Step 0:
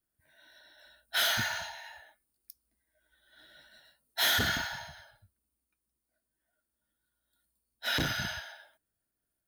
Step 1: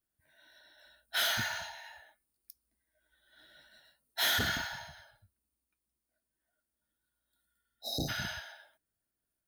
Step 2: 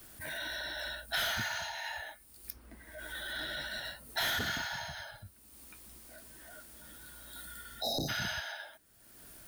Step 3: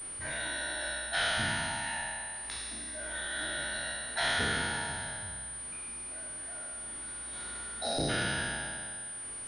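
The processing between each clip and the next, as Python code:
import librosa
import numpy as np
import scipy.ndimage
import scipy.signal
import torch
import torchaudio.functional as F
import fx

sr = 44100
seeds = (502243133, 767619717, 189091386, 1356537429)

y1 = fx.spec_repair(x, sr, seeds[0], start_s=7.46, length_s=0.6, low_hz=850.0, high_hz=3700.0, source='before')
y1 = y1 * librosa.db_to_amplitude(-2.5)
y2 = fx.transient(y1, sr, attack_db=-7, sustain_db=-1)
y2 = fx.band_squash(y2, sr, depth_pct=100)
y2 = y2 * librosa.db_to_amplitude(4.0)
y3 = fx.spec_trails(y2, sr, decay_s=2.11)
y3 = fx.pwm(y3, sr, carrier_hz=9300.0)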